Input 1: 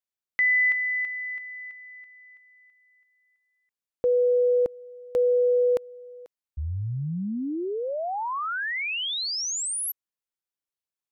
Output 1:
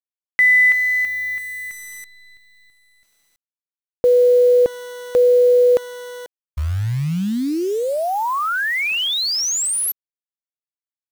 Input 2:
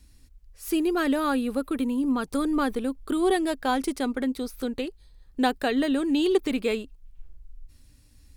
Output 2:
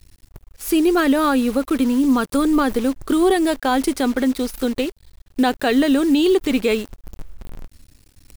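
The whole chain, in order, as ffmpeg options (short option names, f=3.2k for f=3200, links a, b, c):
-af "acrusher=bits=8:dc=4:mix=0:aa=0.000001,alimiter=level_in=16dB:limit=-1dB:release=50:level=0:latency=1,volume=-7.5dB"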